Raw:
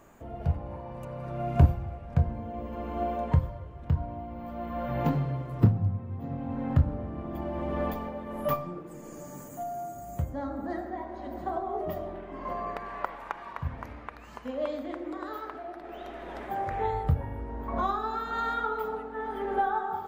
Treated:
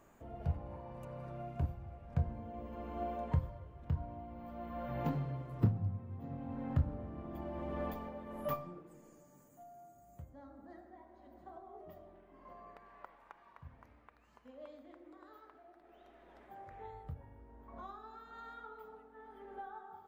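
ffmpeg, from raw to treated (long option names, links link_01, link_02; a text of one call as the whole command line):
ffmpeg -i in.wav -af "volume=0.5dB,afade=type=out:start_time=1.19:duration=0.4:silence=0.334965,afade=type=in:start_time=1.59:duration=0.57:silence=0.375837,afade=type=out:start_time=8.52:duration=0.73:silence=0.281838" out.wav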